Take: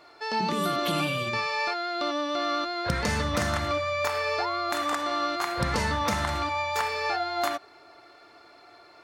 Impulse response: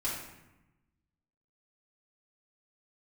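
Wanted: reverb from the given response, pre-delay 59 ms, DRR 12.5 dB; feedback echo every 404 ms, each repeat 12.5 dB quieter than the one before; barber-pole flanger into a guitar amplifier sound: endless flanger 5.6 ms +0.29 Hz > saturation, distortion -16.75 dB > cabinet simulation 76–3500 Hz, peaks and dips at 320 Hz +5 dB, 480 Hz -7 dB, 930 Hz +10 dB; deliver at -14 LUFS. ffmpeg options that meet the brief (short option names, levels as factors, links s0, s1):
-filter_complex "[0:a]aecho=1:1:404|808|1212:0.237|0.0569|0.0137,asplit=2[s0][s1];[1:a]atrim=start_sample=2205,adelay=59[s2];[s1][s2]afir=irnorm=-1:irlink=0,volume=0.133[s3];[s0][s3]amix=inputs=2:normalize=0,asplit=2[s4][s5];[s5]adelay=5.6,afreqshift=0.29[s6];[s4][s6]amix=inputs=2:normalize=1,asoftclip=threshold=0.0596,highpass=76,equalizer=f=320:t=q:w=4:g=5,equalizer=f=480:t=q:w=4:g=-7,equalizer=f=930:t=q:w=4:g=10,lowpass=f=3500:w=0.5412,lowpass=f=3500:w=1.3066,volume=6.31"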